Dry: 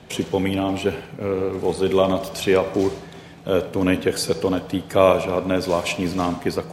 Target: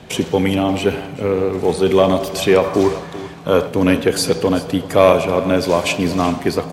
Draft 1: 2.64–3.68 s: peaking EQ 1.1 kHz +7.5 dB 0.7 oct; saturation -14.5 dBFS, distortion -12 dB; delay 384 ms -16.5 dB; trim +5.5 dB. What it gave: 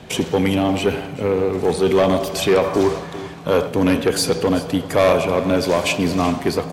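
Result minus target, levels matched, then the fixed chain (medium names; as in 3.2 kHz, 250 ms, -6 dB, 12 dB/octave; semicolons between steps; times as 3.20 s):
saturation: distortion +10 dB
2.64–3.68 s: peaking EQ 1.1 kHz +7.5 dB 0.7 oct; saturation -6 dBFS, distortion -22 dB; delay 384 ms -16.5 dB; trim +5.5 dB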